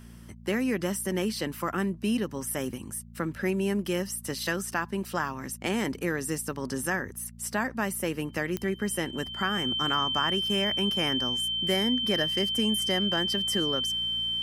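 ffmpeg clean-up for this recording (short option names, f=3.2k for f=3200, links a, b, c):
-af "adeclick=t=4,bandreject=f=57.7:t=h:w=4,bandreject=f=115.4:t=h:w=4,bandreject=f=173.1:t=h:w=4,bandreject=f=230.8:t=h:w=4,bandreject=f=3.1k:w=30"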